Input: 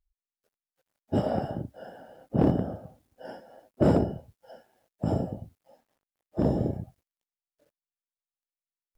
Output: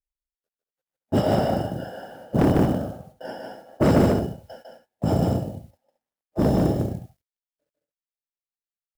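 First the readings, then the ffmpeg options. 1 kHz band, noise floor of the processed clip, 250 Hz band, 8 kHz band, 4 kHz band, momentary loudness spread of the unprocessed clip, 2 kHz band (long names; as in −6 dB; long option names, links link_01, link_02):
+7.5 dB, below −85 dBFS, +6.0 dB, can't be measured, +12.0 dB, 21 LU, +11.0 dB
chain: -filter_complex "[0:a]agate=range=-20dB:threshold=-52dB:ratio=16:detection=peak,asoftclip=type=tanh:threshold=-18.5dB,asplit=2[link_01][link_02];[link_02]aecho=0:1:151.6|221.6:0.708|0.282[link_03];[link_01][link_03]amix=inputs=2:normalize=0,acrusher=bits=9:mode=log:mix=0:aa=0.000001,adynamicequalizer=threshold=0.00562:dfrequency=1800:dqfactor=0.7:tfrequency=1800:tqfactor=0.7:attack=5:release=100:ratio=0.375:range=3:mode=boostabove:tftype=highshelf,volume=6.5dB"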